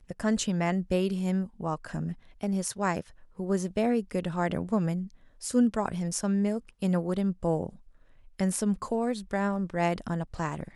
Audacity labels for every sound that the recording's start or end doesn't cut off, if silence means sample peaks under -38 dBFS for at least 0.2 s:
2.410000	3.010000	sound
3.390000	5.070000	sound
5.430000	7.690000	sound